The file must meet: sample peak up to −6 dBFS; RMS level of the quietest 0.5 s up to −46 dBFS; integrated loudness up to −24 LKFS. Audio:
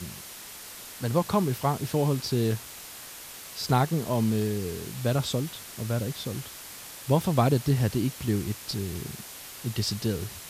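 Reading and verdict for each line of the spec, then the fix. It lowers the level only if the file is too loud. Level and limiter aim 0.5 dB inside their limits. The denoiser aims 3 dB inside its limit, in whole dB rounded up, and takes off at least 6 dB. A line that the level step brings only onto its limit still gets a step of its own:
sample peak −9.5 dBFS: in spec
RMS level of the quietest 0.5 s −43 dBFS: out of spec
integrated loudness −28.0 LKFS: in spec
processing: broadband denoise 6 dB, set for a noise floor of −43 dBFS

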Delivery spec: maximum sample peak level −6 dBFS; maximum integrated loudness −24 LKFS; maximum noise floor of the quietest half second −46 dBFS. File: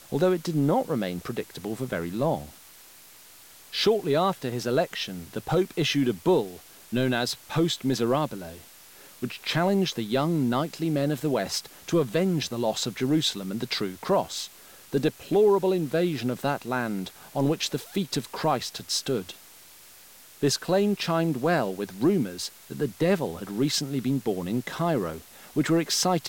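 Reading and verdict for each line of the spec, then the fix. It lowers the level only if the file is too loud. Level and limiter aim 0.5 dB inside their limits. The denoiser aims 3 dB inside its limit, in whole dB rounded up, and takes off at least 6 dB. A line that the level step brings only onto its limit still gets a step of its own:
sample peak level −12.0 dBFS: in spec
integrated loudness −26.5 LKFS: in spec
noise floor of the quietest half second −50 dBFS: in spec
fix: no processing needed

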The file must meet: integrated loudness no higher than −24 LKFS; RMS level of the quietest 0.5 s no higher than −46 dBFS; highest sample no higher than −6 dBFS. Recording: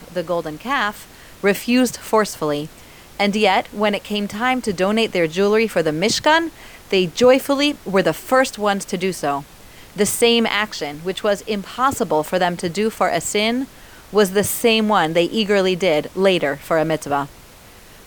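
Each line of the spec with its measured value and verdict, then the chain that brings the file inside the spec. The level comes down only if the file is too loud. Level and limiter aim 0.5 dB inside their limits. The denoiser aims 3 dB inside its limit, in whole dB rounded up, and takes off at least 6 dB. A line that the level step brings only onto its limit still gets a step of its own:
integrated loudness −18.5 LKFS: out of spec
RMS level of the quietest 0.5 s −44 dBFS: out of spec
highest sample −3.0 dBFS: out of spec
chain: level −6 dB

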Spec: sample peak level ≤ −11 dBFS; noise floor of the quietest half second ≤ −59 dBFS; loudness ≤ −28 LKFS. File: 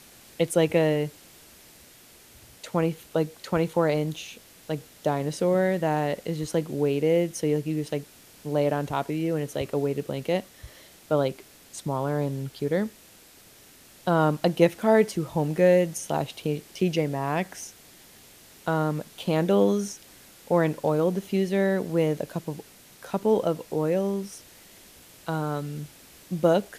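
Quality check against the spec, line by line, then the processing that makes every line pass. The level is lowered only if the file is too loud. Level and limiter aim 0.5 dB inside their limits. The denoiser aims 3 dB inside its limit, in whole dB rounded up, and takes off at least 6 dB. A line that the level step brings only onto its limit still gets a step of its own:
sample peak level −5.5 dBFS: out of spec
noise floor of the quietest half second −53 dBFS: out of spec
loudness −26.0 LKFS: out of spec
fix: broadband denoise 7 dB, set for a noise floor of −53 dBFS
level −2.5 dB
brickwall limiter −11.5 dBFS

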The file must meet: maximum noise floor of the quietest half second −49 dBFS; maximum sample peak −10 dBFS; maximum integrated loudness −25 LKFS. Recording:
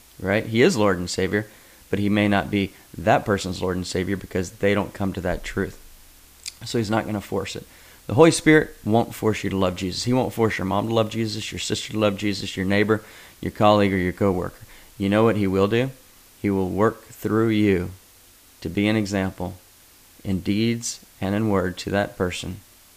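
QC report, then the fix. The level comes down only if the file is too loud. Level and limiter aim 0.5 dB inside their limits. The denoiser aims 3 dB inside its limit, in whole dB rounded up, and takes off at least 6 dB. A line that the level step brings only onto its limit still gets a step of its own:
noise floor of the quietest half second −52 dBFS: in spec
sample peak −1.5 dBFS: out of spec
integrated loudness −22.5 LKFS: out of spec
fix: level −3 dB
brickwall limiter −10.5 dBFS

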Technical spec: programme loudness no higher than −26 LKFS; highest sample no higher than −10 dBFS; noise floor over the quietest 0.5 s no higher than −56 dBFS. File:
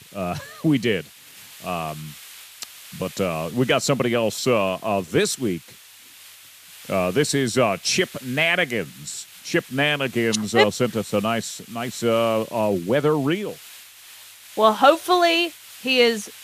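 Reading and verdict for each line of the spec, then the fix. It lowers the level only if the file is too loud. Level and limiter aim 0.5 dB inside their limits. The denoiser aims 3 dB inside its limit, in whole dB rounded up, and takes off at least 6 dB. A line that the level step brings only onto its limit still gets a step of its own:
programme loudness −21.5 LKFS: out of spec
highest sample −2.5 dBFS: out of spec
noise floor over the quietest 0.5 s −47 dBFS: out of spec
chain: broadband denoise 7 dB, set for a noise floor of −47 dBFS
level −5 dB
brickwall limiter −10.5 dBFS

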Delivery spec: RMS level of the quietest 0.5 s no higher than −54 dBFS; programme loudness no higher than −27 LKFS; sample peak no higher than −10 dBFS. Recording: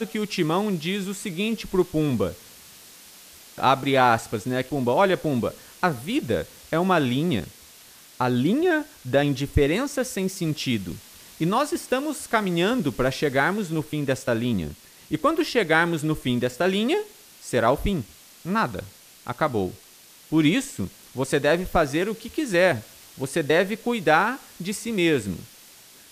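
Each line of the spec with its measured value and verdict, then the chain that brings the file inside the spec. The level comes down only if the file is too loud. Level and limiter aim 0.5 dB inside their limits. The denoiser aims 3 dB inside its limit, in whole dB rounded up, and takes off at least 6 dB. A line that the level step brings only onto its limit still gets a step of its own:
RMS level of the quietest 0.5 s −50 dBFS: out of spec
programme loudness −24.0 LKFS: out of spec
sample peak −5.5 dBFS: out of spec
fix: broadband denoise 6 dB, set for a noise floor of −50 dBFS
level −3.5 dB
brickwall limiter −10.5 dBFS

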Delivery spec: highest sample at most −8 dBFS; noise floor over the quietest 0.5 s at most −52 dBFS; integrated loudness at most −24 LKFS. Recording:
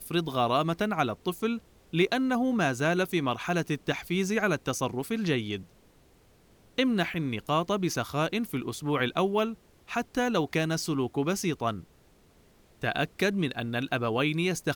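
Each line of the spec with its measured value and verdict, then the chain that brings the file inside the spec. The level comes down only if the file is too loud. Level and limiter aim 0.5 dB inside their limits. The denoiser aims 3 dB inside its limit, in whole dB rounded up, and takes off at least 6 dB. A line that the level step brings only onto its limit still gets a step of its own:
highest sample −11.5 dBFS: in spec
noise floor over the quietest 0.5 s −60 dBFS: in spec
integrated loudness −29.0 LKFS: in spec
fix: no processing needed

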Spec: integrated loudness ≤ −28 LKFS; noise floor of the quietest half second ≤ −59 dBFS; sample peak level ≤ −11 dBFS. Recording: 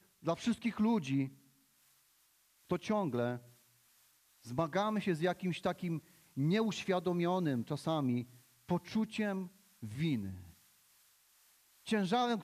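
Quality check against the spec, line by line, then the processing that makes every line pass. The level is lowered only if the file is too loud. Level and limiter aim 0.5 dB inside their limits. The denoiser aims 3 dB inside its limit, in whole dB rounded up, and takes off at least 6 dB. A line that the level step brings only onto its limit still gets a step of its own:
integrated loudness −35.5 LKFS: in spec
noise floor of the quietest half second −71 dBFS: in spec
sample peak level −17.5 dBFS: in spec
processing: no processing needed

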